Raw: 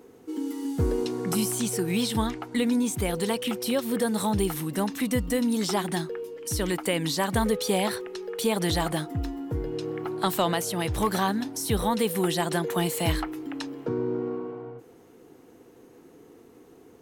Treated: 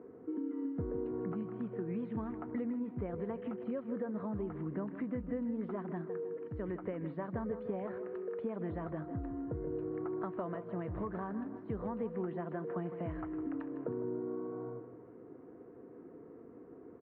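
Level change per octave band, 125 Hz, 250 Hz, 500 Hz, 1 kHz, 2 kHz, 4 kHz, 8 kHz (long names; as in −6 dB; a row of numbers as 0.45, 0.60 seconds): −11.5 dB, −10.0 dB, −10.5 dB, −16.0 dB, −19.5 dB, below −40 dB, below −40 dB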